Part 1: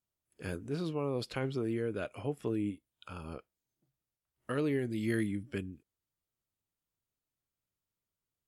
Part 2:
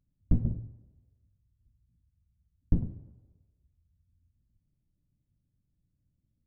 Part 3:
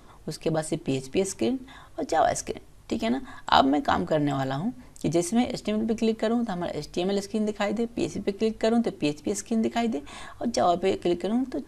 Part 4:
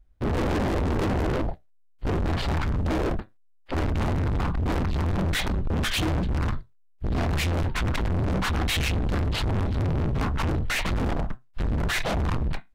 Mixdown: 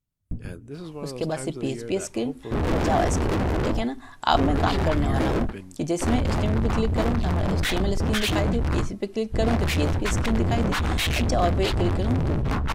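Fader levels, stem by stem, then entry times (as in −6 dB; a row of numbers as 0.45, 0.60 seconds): −1.5, −7.5, −1.5, +1.0 decibels; 0.00, 0.00, 0.75, 2.30 seconds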